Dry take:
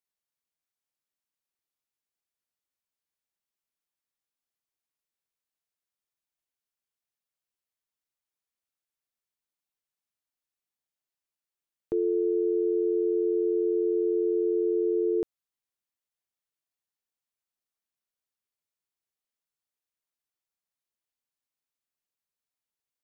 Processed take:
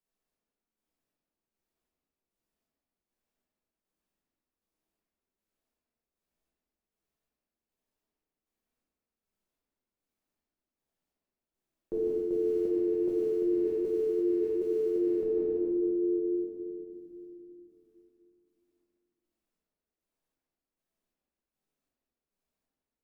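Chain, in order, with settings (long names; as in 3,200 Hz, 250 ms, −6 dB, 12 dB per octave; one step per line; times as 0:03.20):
in parallel at −10 dB: floating-point word with a short mantissa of 2 bits
on the sum: parametric band 110 Hz −15 dB 0.5 octaves
feedback echo with a band-pass in the loop 65 ms, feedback 67%, band-pass 310 Hz, level −7 dB
square-wave tremolo 1.3 Hz, depth 65%, duty 45%
convolution reverb RT60 3.1 s, pre-delay 5 ms, DRR −8 dB
reversed playback
downward compressor 6 to 1, threshold −28 dBFS, peak gain reduction 9 dB
reversed playback
tilt shelving filter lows +7 dB, about 720 Hz
level −1.5 dB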